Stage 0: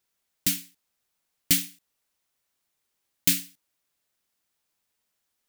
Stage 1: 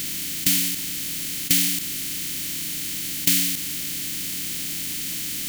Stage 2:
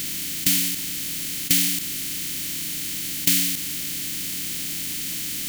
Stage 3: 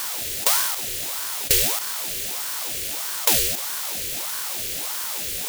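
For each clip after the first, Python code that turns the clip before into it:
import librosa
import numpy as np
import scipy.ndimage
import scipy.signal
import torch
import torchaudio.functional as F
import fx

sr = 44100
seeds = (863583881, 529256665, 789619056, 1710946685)

y1 = fx.bin_compress(x, sr, power=0.2)
y1 = y1 * 10.0 ** (-1.0 / 20.0)
y2 = y1
y3 = fx.ring_lfo(y2, sr, carrier_hz=750.0, swing_pct=75, hz=1.6)
y3 = y3 * 10.0 ** (3.5 / 20.0)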